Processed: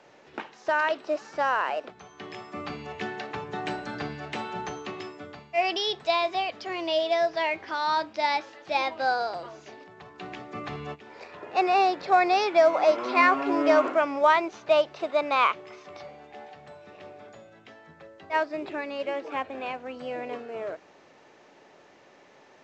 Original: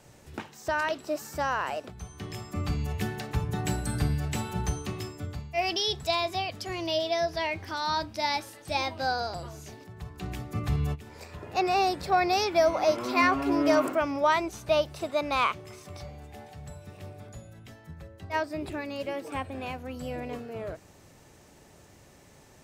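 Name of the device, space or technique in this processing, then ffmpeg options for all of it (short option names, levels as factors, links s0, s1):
telephone: -af "highpass=360,lowpass=3300,volume=1.58" -ar 16000 -c:a pcm_mulaw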